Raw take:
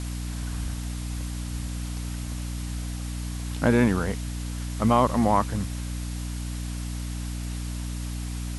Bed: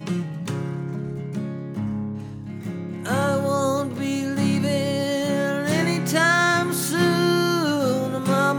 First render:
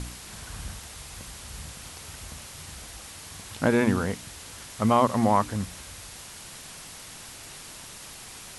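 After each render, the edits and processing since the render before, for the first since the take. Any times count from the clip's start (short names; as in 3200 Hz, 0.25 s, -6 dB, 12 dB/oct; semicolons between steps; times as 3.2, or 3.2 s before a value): de-hum 60 Hz, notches 5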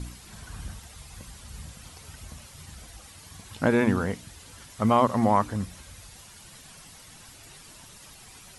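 denoiser 9 dB, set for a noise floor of -44 dBFS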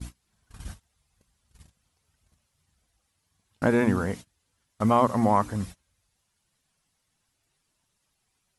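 gate -37 dBFS, range -27 dB; dynamic EQ 3300 Hz, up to -4 dB, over -42 dBFS, Q 1.1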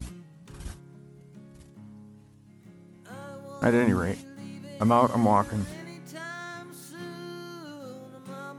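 add bed -20.5 dB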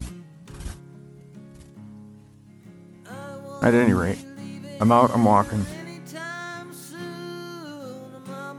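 gain +4.5 dB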